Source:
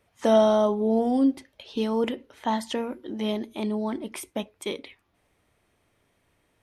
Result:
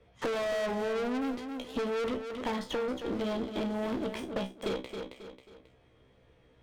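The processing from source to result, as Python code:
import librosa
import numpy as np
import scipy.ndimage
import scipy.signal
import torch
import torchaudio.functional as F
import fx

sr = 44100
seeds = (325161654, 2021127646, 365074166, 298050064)

y = scipy.signal.sosfilt(scipy.signal.butter(2, 4600.0, 'lowpass', fs=sr, output='sos'), x)
y = fx.low_shelf(y, sr, hz=200.0, db=11.0)
y = fx.leveller(y, sr, passes=3)
y = fx.comb_fb(y, sr, f0_hz=64.0, decay_s=0.2, harmonics='all', damping=0.0, mix_pct=100)
y = fx.small_body(y, sr, hz=(480.0, 3300.0), ring_ms=45, db=12)
y = fx.tube_stage(y, sr, drive_db=25.0, bias=0.65)
y = fx.echo_feedback(y, sr, ms=270, feedback_pct=21, wet_db=-10.5)
y = fx.band_squash(y, sr, depth_pct=70)
y = y * 10.0 ** (-5.0 / 20.0)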